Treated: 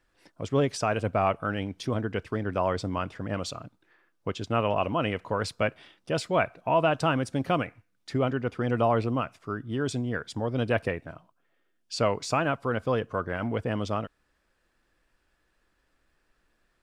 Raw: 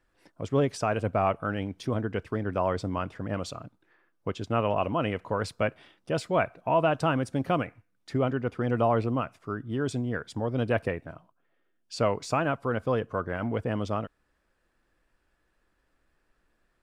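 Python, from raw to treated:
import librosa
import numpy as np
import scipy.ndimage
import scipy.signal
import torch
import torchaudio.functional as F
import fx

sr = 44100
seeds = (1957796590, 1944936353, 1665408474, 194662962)

y = fx.peak_eq(x, sr, hz=4600.0, db=4.5, octaves=2.4)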